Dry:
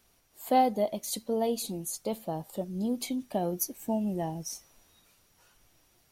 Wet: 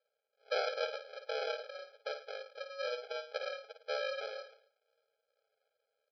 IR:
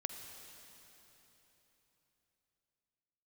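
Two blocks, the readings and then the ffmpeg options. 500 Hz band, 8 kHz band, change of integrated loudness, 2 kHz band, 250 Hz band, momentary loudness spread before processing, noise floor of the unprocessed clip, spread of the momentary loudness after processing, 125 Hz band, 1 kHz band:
−6.0 dB, −24.0 dB, −8.5 dB, +7.5 dB, below −40 dB, 11 LU, −67 dBFS, 10 LU, below −40 dB, −13.5 dB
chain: -af "agate=range=-6dB:threshold=-53dB:ratio=16:detection=peak,aresample=11025,acrusher=samples=30:mix=1:aa=0.000001,aresample=44100,aecho=1:1:53|108:0.398|0.178,afftfilt=real='re*eq(mod(floor(b*sr/1024/430),2),1)':imag='im*eq(mod(floor(b*sr/1024/430),2),1)':win_size=1024:overlap=0.75,volume=2dB"

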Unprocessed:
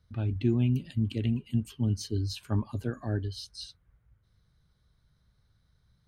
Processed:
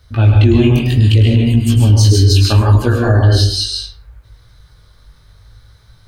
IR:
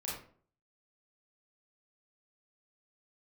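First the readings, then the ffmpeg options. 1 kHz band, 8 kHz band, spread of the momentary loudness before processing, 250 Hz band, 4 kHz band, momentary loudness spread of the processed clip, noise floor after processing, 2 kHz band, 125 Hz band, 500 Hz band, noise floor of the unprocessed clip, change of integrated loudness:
+23.5 dB, +23.0 dB, 12 LU, +15.5 dB, +24.0 dB, 6 LU, −47 dBFS, +23.5 dB, +21.0 dB, +20.0 dB, −70 dBFS, +20.0 dB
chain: -filter_complex "[0:a]equalizer=frequency=180:width=1.3:gain=-13,bandreject=frequency=67.12:width_type=h:width=4,bandreject=frequency=134.24:width_type=h:width=4,bandreject=frequency=201.36:width_type=h:width=4,bandreject=frequency=268.48:width_type=h:width=4,bandreject=frequency=335.6:width_type=h:width=4,bandreject=frequency=402.72:width_type=h:width=4,bandreject=frequency=469.84:width_type=h:width=4,bandreject=frequency=536.96:width_type=h:width=4,bandreject=frequency=604.08:width_type=h:width=4,bandreject=frequency=671.2:width_type=h:width=4,bandreject=frequency=738.32:width_type=h:width=4,bandreject=frequency=805.44:width_type=h:width=4,bandreject=frequency=872.56:width_type=h:width=4,bandreject=frequency=939.68:width_type=h:width=4,bandreject=frequency=1006.8:width_type=h:width=4,bandreject=frequency=1073.92:width_type=h:width=4,bandreject=frequency=1141.04:width_type=h:width=4,bandreject=frequency=1208.16:width_type=h:width=4,bandreject=frequency=1275.28:width_type=h:width=4,bandreject=frequency=1342.4:width_type=h:width=4,bandreject=frequency=1409.52:width_type=h:width=4,bandreject=frequency=1476.64:width_type=h:width=4,bandreject=frequency=1543.76:width_type=h:width=4,bandreject=frequency=1610.88:width_type=h:width=4,bandreject=frequency=1678:width_type=h:width=4,bandreject=frequency=1745.12:width_type=h:width=4,bandreject=frequency=1812.24:width_type=h:width=4,bandreject=frequency=1879.36:width_type=h:width=4,bandreject=frequency=1946.48:width_type=h:width=4,bandreject=frequency=2013.6:width_type=h:width=4,bandreject=frequency=2080.72:width_type=h:width=4,bandreject=frequency=2147.84:width_type=h:width=4,bandreject=frequency=2214.96:width_type=h:width=4,bandreject=frequency=2282.08:width_type=h:width=4,bandreject=frequency=2349.2:width_type=h:width=4,bandreject=frequency=2416.32:width_type=h:width=4,flanger=delay=16.5:depth=5.2:speed=0.69,asplit=2[link_01][link_02];[1:a]atrim=start_sample=2205,adelay=103[link_03];[link_02][link_03]afir=irnorm=-1:irlink=0,volume=-2.5dB[link_04];[link_01][link_04]amix=inputs=2:normalize=0,alimiter=level_in=26.5dB:limit=-1dB:release=50:level=0:latency=1,volume=-1dB"

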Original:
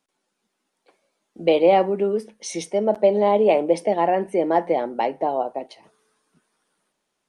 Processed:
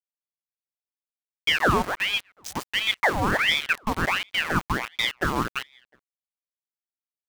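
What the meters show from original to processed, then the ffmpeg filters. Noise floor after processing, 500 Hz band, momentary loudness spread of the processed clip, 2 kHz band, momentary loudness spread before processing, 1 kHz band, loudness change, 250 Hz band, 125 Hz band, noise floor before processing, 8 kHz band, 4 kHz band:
below −85 dBFS, −14.5 dB, 9 LU, +12.5 dB, 10 LU, −4.5 dB, −3.5 dB, −6.0 dB, +4.5 dB, −77 dBFS, 0.0 dB, +12.5 dB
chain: -filter_complex "[0:a]dynaudnorm=framelen=230:gausssize=3:maxgain=13dB,aeval=exprs='val(0)*gte(abs(val(0)),0.133)':channel_layout=same,asplit=2[link_01][link_02];[link_02]adelay=367.3,volume=-30dB,highshelf=frequency=4000:gain=-8.27[link_03];[link_01][link_03]amix=inputs=2:normalize=0,aeval=exprs='val(0)*sin(2*PI*1600*n/s+1600*0.8/1.4*sin(2*PI*1.4*n/s))':channel_layout=same,volume=-7.5dB"

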